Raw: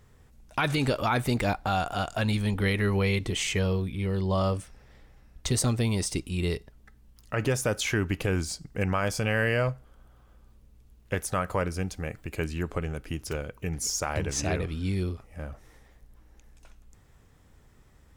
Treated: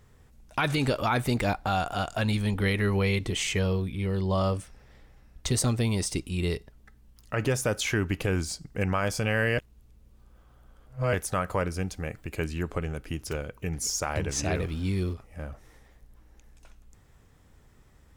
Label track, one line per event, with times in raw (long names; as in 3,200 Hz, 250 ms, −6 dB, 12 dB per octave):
9.580000	11.130000	reverse
14.550000	15.140000	converter with a step at zero of −45 dBFS